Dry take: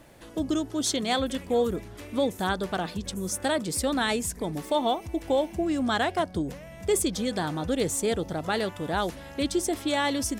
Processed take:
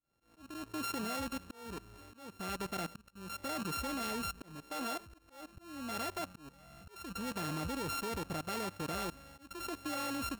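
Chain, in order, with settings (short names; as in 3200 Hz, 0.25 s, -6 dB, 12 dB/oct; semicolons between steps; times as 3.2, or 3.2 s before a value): sample sorter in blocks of 32 samples; level quantiser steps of 17 dB; auto swell 0.411 s; gain -3.5 dB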